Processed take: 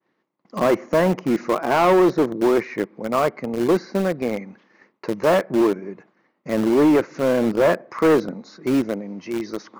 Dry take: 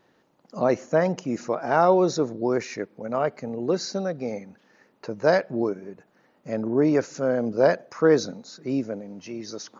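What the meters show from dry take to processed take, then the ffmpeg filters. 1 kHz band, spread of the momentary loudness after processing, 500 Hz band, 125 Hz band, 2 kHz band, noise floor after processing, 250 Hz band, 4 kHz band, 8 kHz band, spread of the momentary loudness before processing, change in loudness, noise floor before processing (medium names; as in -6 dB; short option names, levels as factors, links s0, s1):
+4.0 dB, 13 LU, +3.5 dB, +2.5 dB, +4.0 dB, -71 dBFS, +6.0 dB, +3.0 dB, no reading, 16 LU, +4.0 dB, -64 dBFS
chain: -filter_complex "[0:a]highpass=110,equalizer=f=200:t=q:w=4:g=4,equalizer=f=340:t=q:w=4:g=7,equalizer=f=1100:t=q:w=4:g=8,equalizer=f=2100:t=q:w=4:g=9,lowpass=f=6000:w=0.5412,lowpass=f=6000:w=1.3066,acrossover=split=2100[s0][s1];[s0]asoftclip=type=tanh:threshold=0.15[s2];[s1]acompressor=threshold=0.00398:ratio=6[s3];[s2][s3]amix=inputs=2:normalize=0,agate=range=0.0224:threshold=0.00316:ratio=3:detection=peak,asplit=2[s4][s5];[s5]acrusher=bits=3:mix=0:aa=0.000001,volume=0.316[s6];[s4][s6]amix=inputs=2:normalize=0,adynamicequalizer=threshold=0.00794:dfrequency=3900:dqfactor=0.7:tfrequency=3900:tqfactor=0.7:attack=5:release=100:ratio=0.375:range=3.5:mode=cutabove:tftype=highshelf,volume=1.41"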